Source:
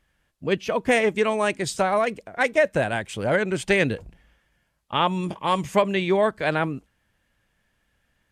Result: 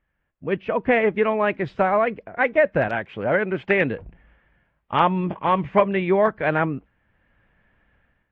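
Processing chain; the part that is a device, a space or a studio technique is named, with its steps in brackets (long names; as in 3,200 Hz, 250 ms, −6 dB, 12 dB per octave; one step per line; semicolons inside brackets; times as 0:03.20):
0:02.88–0:03.96: high-pass filter 170 Hz 6 dB per octave
action camera in a waterproof case (low-pass filter 2,400 Hz 24 dB per octave; automatic gain control gain up to 13.5 dB; level −5.5 dB; AAC 48 kbit/s 44,100 Hz)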